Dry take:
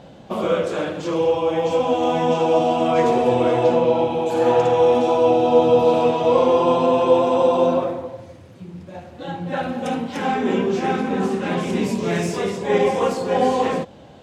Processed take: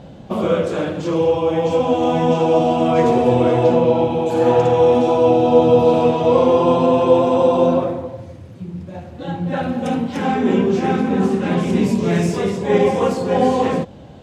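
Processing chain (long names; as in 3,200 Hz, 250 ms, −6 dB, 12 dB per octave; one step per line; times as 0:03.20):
low-shelf EQ 270 Hz +9.5 dB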